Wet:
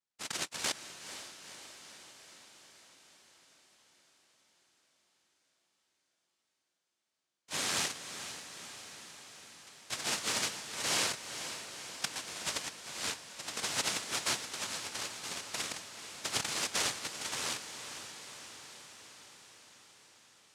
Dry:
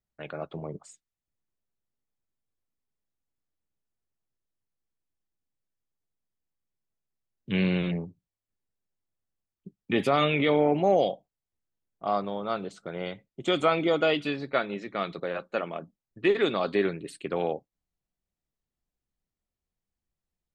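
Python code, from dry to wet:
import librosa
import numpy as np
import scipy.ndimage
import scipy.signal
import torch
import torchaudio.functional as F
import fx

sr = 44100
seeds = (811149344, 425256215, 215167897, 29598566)

p1 = fx.filter_lfo_bandpass(x, sr, shape='saw_down', hz=1.4, low_hz=550.0, high_hz=3900.0, q=2.8)
p2 = fx.over_compress(p1, sr, threshold_db=-39.0, ratio=-0.5)
p3 = fx.spec_erase(p2, sr, start_s=14.97, length_s=0.49, low_hz=640.0, high_hz=3600.0)
p4 = fx.noise_vocoder(p3, sr, seeds[0], bands=1)
p5 = p4 + fx.echo_diffused(p4, sr, ms=480, feedback_pct=67, wet_db=-10.0, dry=0)
y = F.gain(torch.from_numpy(p5), 5.0).numpy()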